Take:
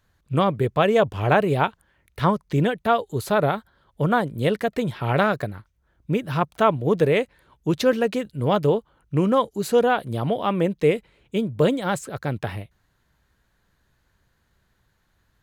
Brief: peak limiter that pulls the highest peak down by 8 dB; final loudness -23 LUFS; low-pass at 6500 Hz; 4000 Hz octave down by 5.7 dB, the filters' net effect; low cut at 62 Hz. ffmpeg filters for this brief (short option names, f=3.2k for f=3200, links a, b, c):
-af "highpass=62,lowpass=6.5k,equalizer=f=4k:t=o:g=-7.5,volume=1.5dB,alimiter=limit=-10.5dB:level=0:latency=1"